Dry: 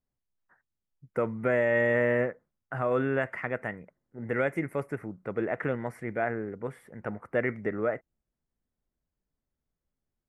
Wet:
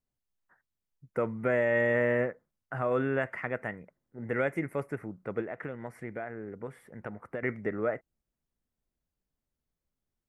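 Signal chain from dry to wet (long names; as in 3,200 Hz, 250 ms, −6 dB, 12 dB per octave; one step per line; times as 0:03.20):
0:05.40–0:07.43: downward compressor 6 to 1, threshold −33 dBFS, peak gain reduction 10.5 dB
level −1.5 dB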